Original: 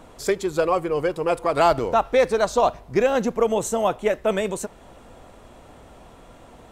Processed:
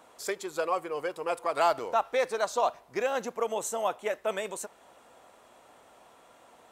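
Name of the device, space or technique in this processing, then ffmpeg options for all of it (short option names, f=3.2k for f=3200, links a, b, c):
filter by subtraction: -filter_complex "[0:a]highshelf=f=6.8k:g=5.5,asplit=2[a][b];[b]lowpass=920,volume=-1[c];[a][c]amix=inputs=2:normalize=0,volume=-8dB"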